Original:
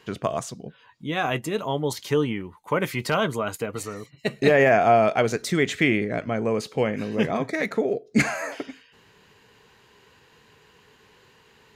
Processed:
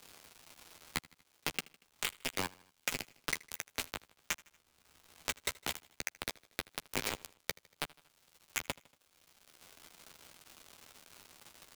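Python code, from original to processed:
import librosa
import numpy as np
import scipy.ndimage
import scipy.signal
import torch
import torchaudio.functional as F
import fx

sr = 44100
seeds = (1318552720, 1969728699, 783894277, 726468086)

y = fx.tape_start_head(x, sr, length_s=1.56)
y = fx.dynamic_eq(y, sr, hz=2400.0, q=1.9, threshold_db=-41.0, ratio=4.0, max_db=4)
y = fx.wah_lfo(y, sr, hz=4.0, low_hz=800.0, high_hz=2100.0, q=4.1)
y = fx.over_compress(y, sr, threshold_db=-51.0, ratio=-1.0)
y = fx.add_hum(y, sr, base_hz=60, snr_db=29)
y = fx.env_phaser(y, sr, low_hz=530.0, high_hz=1200.0, full_db=-39.5)
y = fx.quant_dither(y, sr, seeds[0], bits=6, dither='none')
y = fx.dmg_crackle(y, sr, seeds[1], per_s=300.0, level_db=-72.0)
y = fx.peak_eq(y, sr, hz=1800.0, db=-3.5, octaves=0.22)
y = fx.doubler(y, sr, ms=12.0, db=-9.0)
y = fx.echo_feedback(y, sr, ms=78, feedback_pct=46, wet_db=-23.0)
y = fx.band_squash(y, sr, depth_pct=70)
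y = y * librosa.db_to_amplitude(11.5)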